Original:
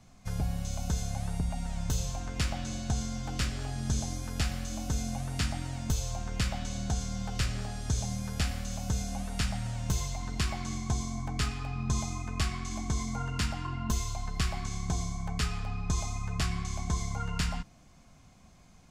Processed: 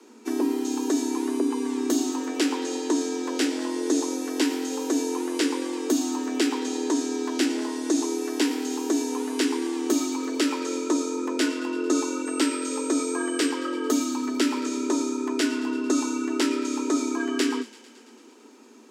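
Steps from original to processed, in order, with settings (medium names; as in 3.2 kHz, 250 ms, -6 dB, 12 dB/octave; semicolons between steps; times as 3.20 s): 12.25–13.49 s: whistle 8.1 kHz -43 dBFS; feedback echo behind a high-pass 112 ms, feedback 74%, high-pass 1.6 kHz, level -17 dB; frequency shift +220 Hz; trim +6 dB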